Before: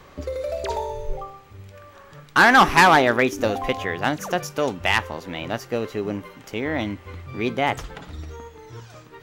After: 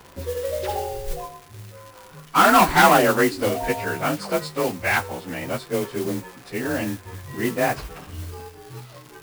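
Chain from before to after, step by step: inharmonic rescaling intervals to 91%; modulation noise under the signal 14 dB; crackle 200/s -36 dBFS; gain +2 dB

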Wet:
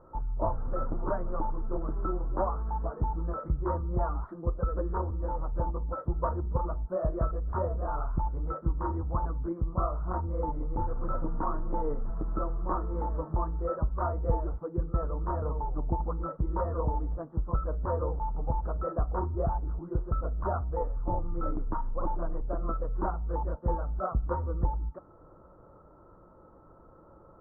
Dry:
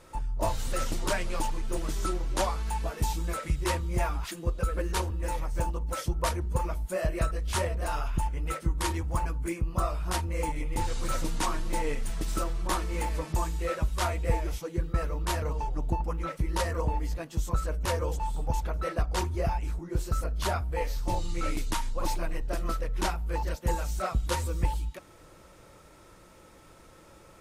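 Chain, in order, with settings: elliptic low-pass 1300 Hz, stop band 50 dB

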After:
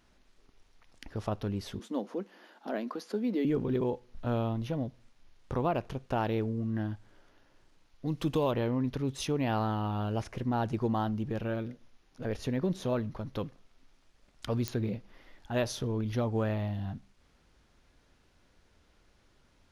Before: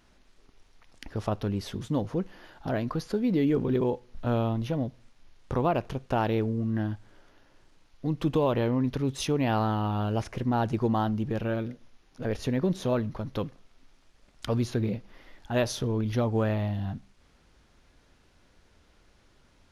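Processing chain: 1.79–3.45 elliptic high-pass 210 Hz, stop band 40 dB; 8.07–8.51 high shelf 3400 Hz +8 dB; pops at 14.68, -12 dBFS; gain -4 dB

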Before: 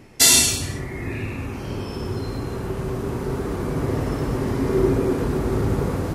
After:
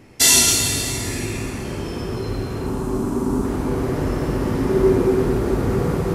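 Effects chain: 2.66–3.45 graphic EQ 125/250/500/1000/2000/4000/8000 Hz -5/+11/-7/+6/-9/-4/+7 dB; plate-style reverb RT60 3.7 s, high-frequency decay 0.7×, DRR -0.5 dB; gain -1 dB

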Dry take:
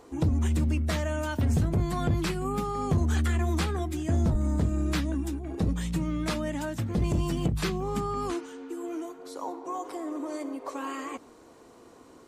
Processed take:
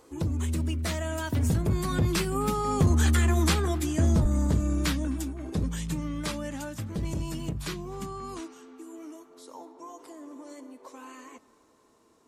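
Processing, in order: Doppler pass-by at 3.29, 17 m/s, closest 25 m; high shelf 4200 Hz +7 dB; notch 730 Hz, Q 12; narrowing echo 0.256 s, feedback 76%, band-pass 1000 Hz, level -20 dB; gain +3.5 dB

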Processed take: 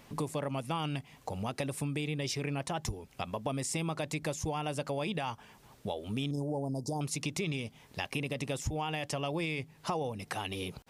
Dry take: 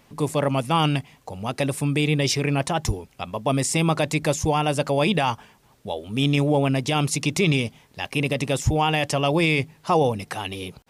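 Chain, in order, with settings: 6.31–7.01 Chebyshev band-stop 940–4700 Hz, order 4; compressor 5:1, threshold -33 dBFS, peak gain reduction 16 dB

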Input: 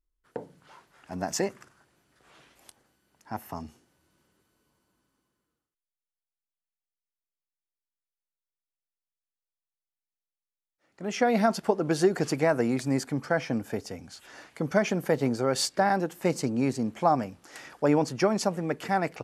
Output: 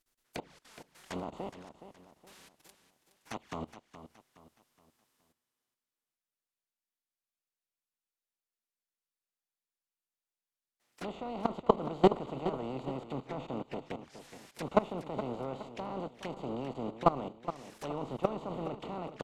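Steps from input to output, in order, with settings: spectral contrast lowered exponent 0.38; bell 100 Hz -13.5 dB 0.3 oct; level quantiser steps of 20 dB; envelope flanger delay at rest 8.7 ms, full sweep at -40 dBFS; formant shift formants +2 st; treble ducked by the level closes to 1300 Hz, closed at -40.5 dBFS; on a send: feedback echo 0.419 s, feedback 39%, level -12 dB; on the sum: gain +6 dB

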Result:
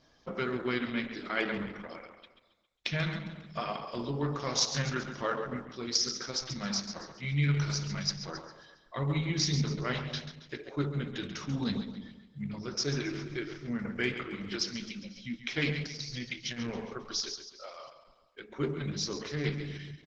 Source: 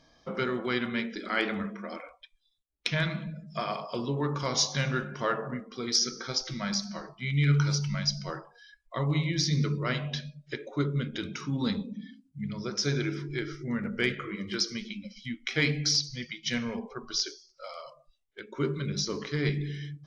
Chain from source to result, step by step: 5.47–5.93 dynamic EQ 180 Hz, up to +6 dB, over -58 dBFS, Q 7.9; 15.86–17.11 negative-ratio compressor -32 dBFS, ratio -0.5; feedback echo 0.136 s, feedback 44%, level -10 dB; gain -2.5 dB; Opus 10 kbps 48000 Hz

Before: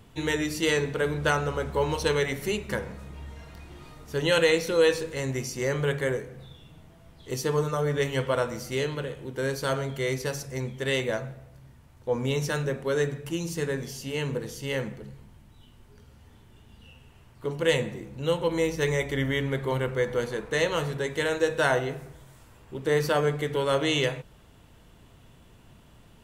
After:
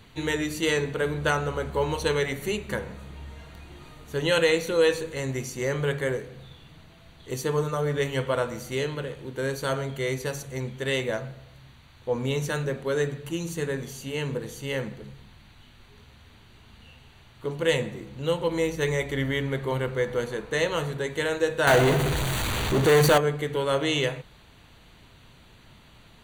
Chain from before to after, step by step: band noise 650–4600 Hz -59 dBFS; 21.67–23.18 power-law curve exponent 0.35; Butterworth band-stop 5200 Hz, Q 5.1

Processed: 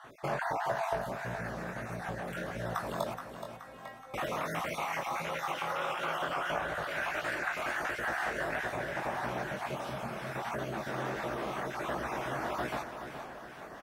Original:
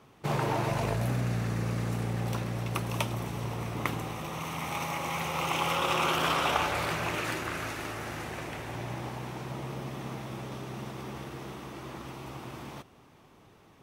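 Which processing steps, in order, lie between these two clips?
random spectral dropouts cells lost 36%; 6.19–6.83 low shelf 380 Hz +9 dB; compressor 4:1, threshold -41 dBFS, peak gain reduction 17 dB; chorus 1.5 Hz, delay 16.5 ms, depth 6 ms; 3.14–4.14 metallic resonator 260 Hz, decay 0.52 s, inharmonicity 0.002; 9.82–10.28 spectral repair 240–2800 Hz; feedback echo 0.424 s, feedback 47%, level -9.5 dB; vocal rider within 4 dB 2 s; fifteen-band EQ 100 Hz -9 dB, 630 Hz +11 dB, 1600 Hz +12 dB; gain +6 dB

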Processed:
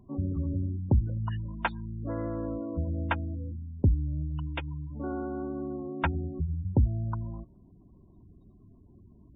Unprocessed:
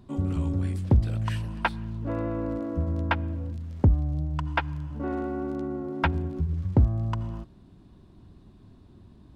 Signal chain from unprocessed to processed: spectral gate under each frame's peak -25 dB strong; 3.71–4.68 band shelf 1100 Hz -11 dB; gain -3.5 dB

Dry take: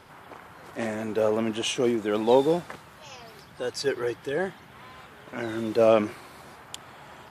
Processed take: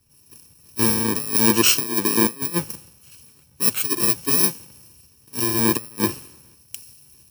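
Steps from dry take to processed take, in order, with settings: FFT order left unsorted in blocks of 64 samples; negative-ratio compressor -27 dBFS, ratio -0.5; three-band expander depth 100%; gain +7 dB

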